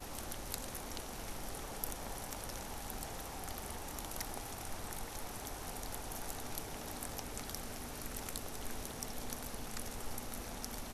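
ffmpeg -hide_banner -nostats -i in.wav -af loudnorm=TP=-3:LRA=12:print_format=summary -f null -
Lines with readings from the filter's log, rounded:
Input Integrated:    -43.6 LUFS
Input True Peak:     -14.6 dBTP
Input LRA:             0.3 LU
Input Threshold:     -53.6 LUFS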